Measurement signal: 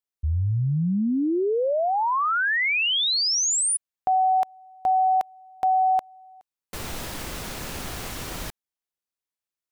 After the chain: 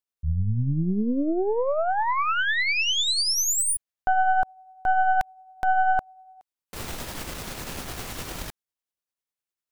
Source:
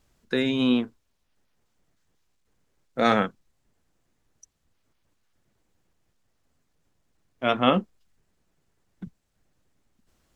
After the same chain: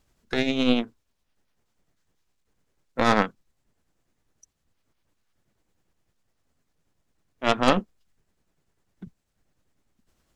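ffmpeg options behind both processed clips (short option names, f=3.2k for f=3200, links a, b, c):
-af "aeval=exprs='0.668*(cos(1*acos(clip(val(0)/0.668,-1,1)))-cos(1*PI/2))+0.133*(cos(6*acos(clip(val(0)/0.668,-1,1)))-cos(6*PI/2))':c=same,tremolo=f=10:d=0.35"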